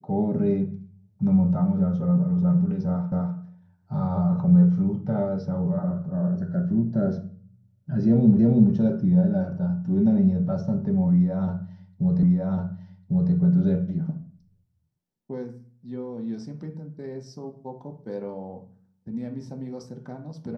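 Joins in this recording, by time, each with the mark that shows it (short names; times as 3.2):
3.12 repeat of the last 0.25 s
8.39 repeat of the last 0.33 s
12.23 repeat of the last 1.1 s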